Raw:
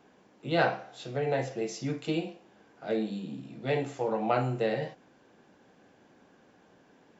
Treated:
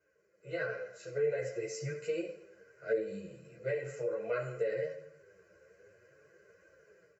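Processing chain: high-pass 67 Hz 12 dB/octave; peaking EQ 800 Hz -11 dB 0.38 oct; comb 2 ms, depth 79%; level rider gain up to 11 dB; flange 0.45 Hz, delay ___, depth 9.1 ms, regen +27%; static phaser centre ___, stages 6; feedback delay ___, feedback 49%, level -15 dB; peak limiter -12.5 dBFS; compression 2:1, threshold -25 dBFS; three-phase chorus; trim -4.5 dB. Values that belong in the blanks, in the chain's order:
3.1 ms, 940 Hz, 81 ms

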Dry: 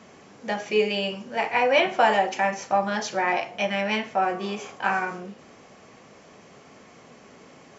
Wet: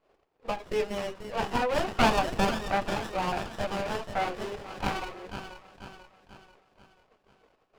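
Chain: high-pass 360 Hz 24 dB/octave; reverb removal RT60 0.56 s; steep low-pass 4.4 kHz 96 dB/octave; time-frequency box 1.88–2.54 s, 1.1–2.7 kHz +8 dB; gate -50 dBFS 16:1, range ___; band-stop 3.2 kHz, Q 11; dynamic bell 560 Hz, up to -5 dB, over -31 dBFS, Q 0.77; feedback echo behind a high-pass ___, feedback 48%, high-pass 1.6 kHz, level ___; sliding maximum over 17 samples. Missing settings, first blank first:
-22 dB, 488 ms, -5 dB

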